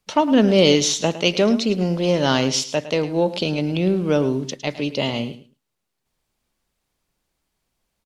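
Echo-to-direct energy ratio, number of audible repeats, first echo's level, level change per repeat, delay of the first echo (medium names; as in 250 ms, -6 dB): -14.0 dB, 2, -14.0 dB, -15.0 dB, 108 ms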